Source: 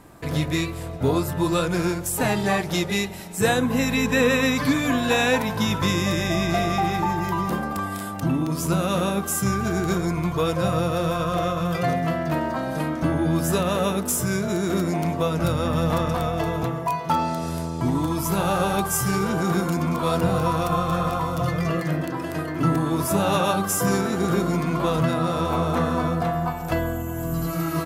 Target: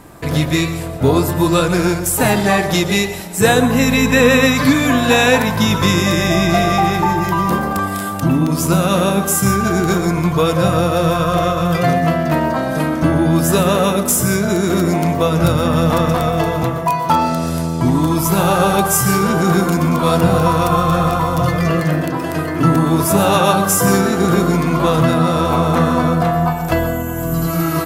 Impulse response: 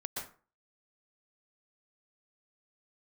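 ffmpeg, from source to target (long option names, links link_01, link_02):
-filter_complex "[0:a]asplit=2[link_01][link_02];[1:a]atrim=start_sample=2205,highshelf=frequency=7700:gain=8[link_03];[link_02][link_03]afir=irnorm=-1:irlink=0,volume=-9dB[link_04];[link_01][link_04]amix=inputs=2:normalize=0,volume=6dB"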